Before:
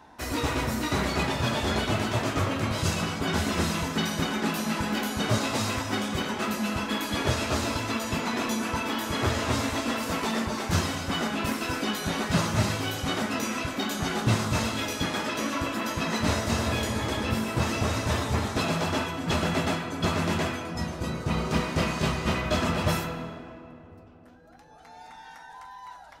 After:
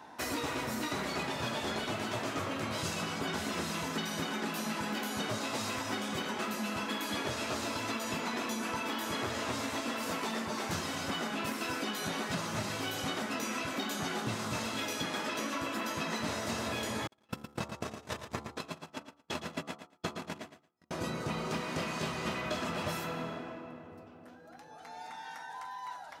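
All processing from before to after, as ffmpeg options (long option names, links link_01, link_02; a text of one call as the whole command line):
ffmpeg -i in.wav -filter_complex "[0:a]asettb=1/sr,asplit=3[link_01][link_02][link_03];[link_01]atrim=end=17.074[link_04];[link_02]atrim=start=17.07:end=20.91,asetpts=PTS-STARTPTS,afade=type=in:duration=0.004:curve=qsin,afade=type=out:start_time=3.836:duration=0.004:curve=qsin,agate=range=-56dB:threshold=-24dB:ratio=16:release=100:detection=peak,bandreject=frequency=72.31:width_type=h:width=4,bandreject=frequency=144.62:width_type=h:width=4,bandreject=frequency=216.93:width_type=h:width=4,bandreject=frequency=289.24:width_type=h:width=4,bandreject=frequency=361.55:width_type=h:width=4,bandreject=frequency=433.86:width_type=h:width=4,bandreject=frequency=506.17:width_type=h:width=4,bandreject=frequency=578.48:width_type=h:width=4,bandreject=frequency=650.79:width_type=h:width=4,bandreject=frequency=723.1:width_type=h:width=4,bandreject=frequency=795.41:width_type=h:width=4,bandreject=frequency=867.72:width_type=h:width=4,bandreject=frequency=940.03:width_type=h:width=4,bandreject=frequency=1012.34:width_type=h:width=4,bandreject=frequency=1084.65:width_type=h:width=4,bandreject=frequency=1156.96:width_type=h:width=4,bandreject=frequency=1229.27:width_type=h:width=4,bandreject=frequency=1301.58:width_type=h:width=4,bandreject=frequency=1373.89:width_type=h:width=4,aecho=1:1:113|226:0.316|0.0506,atrim=end_sample=169344[link_05];[link_03]atrim=start=20.906[link_06];[link_04][link_05]acrossfade=duration=0.004:curve1=hsin:curve2=qsin[link_07];[link_07][link_06]acrossfade=duration=0.004:curve1=qsin:curve2=hsin,highpass=110,lowshelf=frequency=170:gain=-6.5,acompressor=threshold=-34dB:ratio=6,volume=1.5dB" out.wav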